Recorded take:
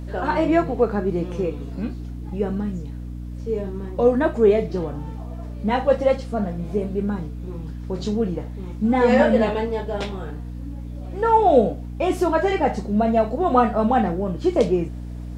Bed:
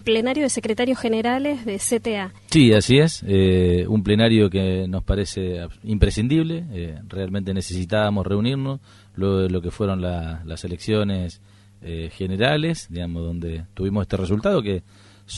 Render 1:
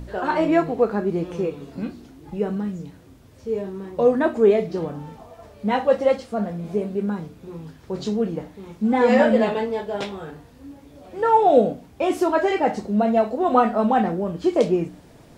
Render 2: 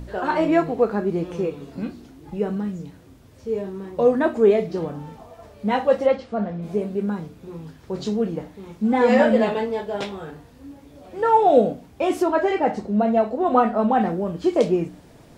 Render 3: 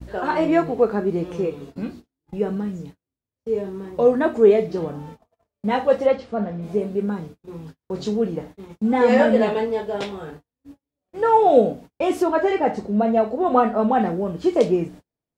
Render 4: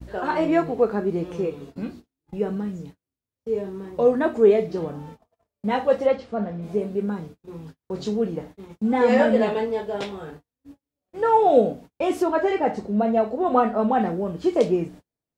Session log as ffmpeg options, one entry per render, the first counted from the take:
-af "bandreject=f=60:t=h:w=4,bandreject=f=120:t=h:w=4,bandreject=f=180:t=h:w=4,bandreject=f=240:t=h:w=4,bandreject=f=300:t=h:w=4"
-filter_complex "[0:a]asplit=3[a][b][c];[a]afade=t=out:st=6.06:d=0.02[d];[b]lowpass=3.9k,afade=t=in:st=6.06:d=0.02,afade=t=out:st=6.61:d=0.02[e];[c]afade=t=in:st=6.61:d=0.02[f];[d][e][f]amix=inputs=3:normalize=0,asettb=1/sr,asplit=3[g][h][i];[g]atrim=end=12.224[j];[h]atrim=start=12.22:end=14.01,asetpts=PTS-STARTPTS,afade=t=in:d=0.004:c=qsin,afade=t=out:st=1.786:d=0.004:c=qsin,highshelf=f=3.4k:g=-7[k];[i]atrim=start=14.006[l];[j][k]acrossfade=d=0.004:c1=hsin:c2=qsin[m];[m][l]acrossfade=d=0.004:c1=qsin:c2=hsin"
-af "adynamicequalizer=threshold=0.0224:dfrequency=430:dqfactor=5:tfrequency=430:tqfactor=5:attack=5:release=100:ratio=0.375:range=1.5:mode=boostabove:tftype=bell,agate=range=-41dB:threshold=-38dB:ratio=16:detection=peak"
-af "volume=-2dB"

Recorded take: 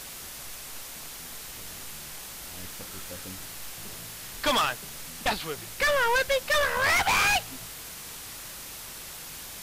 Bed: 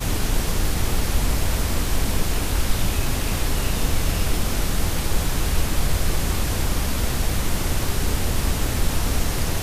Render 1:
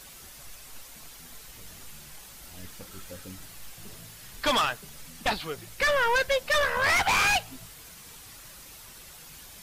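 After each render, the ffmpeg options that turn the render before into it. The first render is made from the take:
-af "afftdn=nr=8:nf=-41"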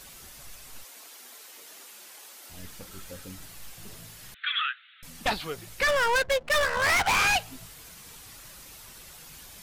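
-filter_complex "[0:a]asettb=1/sr,asplit=3[a][b][c];[a]atrim=end=0.844[d];[b]atrim=start=0.84:end=2.5,asetpts=PTS-STARTPTS,afade=t=in:d=0.004:c=qsin,afade=t=out:st=1.656:d=0.004:c=qsin,highpass=f=310:w=0.5412,highpass=f=310:w=1.3066[e];[c]atrim=start=2.496[f];[d][e]acrossfade=d=0.004:c1=hsin:c2=qsin[g];[g][f]acrossfade=d=0.004:c1=qsin:c2=hsin,asettb=1/sr,asplit=3[h][i][j];[h]atrim=end=4.344[k];[i]atrim=start=4.34:end=5.03,asetpts=PTS-STARTPTS,afade=t=in:d=0.004:c=qsin,afade=t=out:st=0.686:d=0.004:c=qsin,asuperpass=centerf=2200:order=20:qfactor=0.87[l];[j]atrim=start=5.026[m];[k][l]acrossfade=d=0.004:c1=hsin:c2=qsin[n];[n][m]acrossfade=d=0.004:c1=qsin:c2=hsin,asettb=1/sr,asplit=3[o][p][q];[o]atrim=end=5.884[r];[p]atrim=start=5.88:end=7.16,asetpts=PTS-STARTPTS,afade=t=in:d=0.004:c=qsin,afade=t=out:st=1.276:d=0.004:c=qsin,adynamicsmooth=sensitivity=7.5:basefreq=520[s];[q]atrim=start=7.156[t];[r][s]acrossfade=d=0.004:c1=hsin:c2=qsin[u];[u][t]acrossfade=d=0.004:c1=qsin:c2=hsin"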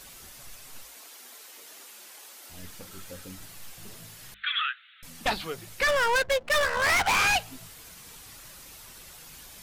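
-af "bandreject=f=50:t=h:w=6,bandreject=f=100:t=h:w=6,bandreject=f=150:t=h:w=6,bandreject=f=200:t=h:w=6"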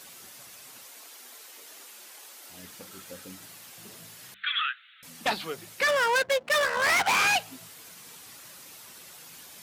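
-af "highpass=160"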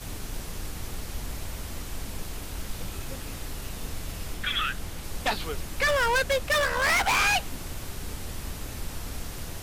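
-filter_complex "[1:a]volume=-14dB[a];[0:a][a]amix=inputs=2:normalize=0"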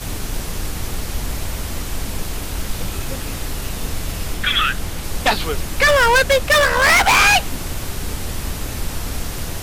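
-af "volume=10.5dB"

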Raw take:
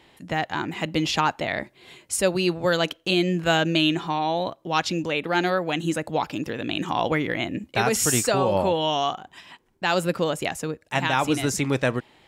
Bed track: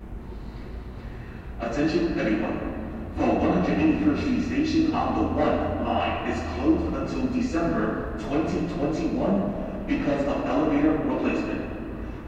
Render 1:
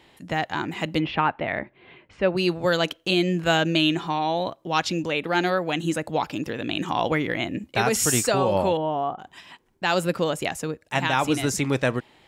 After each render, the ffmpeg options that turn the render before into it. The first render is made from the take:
-filter_complex "[0:a]asplit=3[a][b][c];[a]afade=t=out:st=0.98:d=0.02[d];[b]lowpass=f=2.7k:w=0.5412,lowpass=f=2.7k:w=1.3066,afade=t=in:st=0.98:d=0.02,afade=t=out:st=2.36:d=0.02[e];[c]afade=t=in:st=2.36:d=0.02[f];[d][e][f]amix=inputs=3:normalize=0,asettb=1/sr,asplit=3[g][h][i];[g]atrim=end=8.774[j];[h]atrim=start=8.77:end=9.19,asetpts=PTS-STARTPTS,afade=t=in:d=0.004:c=qsin,afade=t=out:st=0.416:d=0.004:c=qsin,lowpass=1k[k];[i]atrim=start=9.186[l];[j][k]acrossfade=d=0.004:c1=hsin:c2=qsin[m];[m][l]acrossfade=d=0.004:c1=qsin:c2=hsin"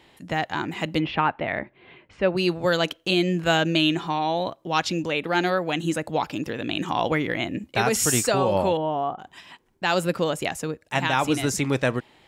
-af anull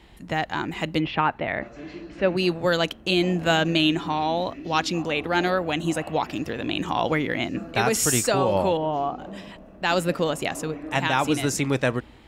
-filter_complex "[1:a]volume=-15.5dB[a];[0:a][a]amix=inputs=2:normalize=0"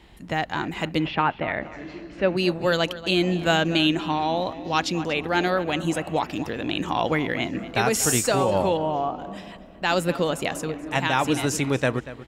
-filter_complex "[0:a]asplit=2[a][b];[b]adelay=237,lowpass=f=4.5k:p=1,volume=-15dB,asplit=2[c][d];[d]adelay=237,lowpass=f=4.5k:p=1,volume=0.33,asplit=2[e][f];[f]adelay=237,lowpass=f=4.5k:p=1,volume=0.33[g];[a][c][e][g]amix=inputs=4:normalize=0"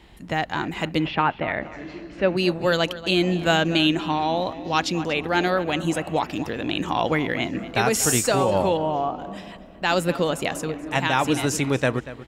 -af "volume=1dB"

